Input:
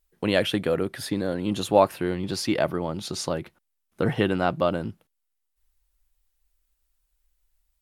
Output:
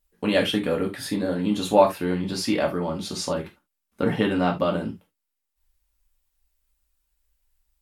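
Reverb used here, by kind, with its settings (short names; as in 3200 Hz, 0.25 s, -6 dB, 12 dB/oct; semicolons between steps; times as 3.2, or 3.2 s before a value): non-linear reverb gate 0.1 s falling, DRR -0.5 dB; gain -2 dB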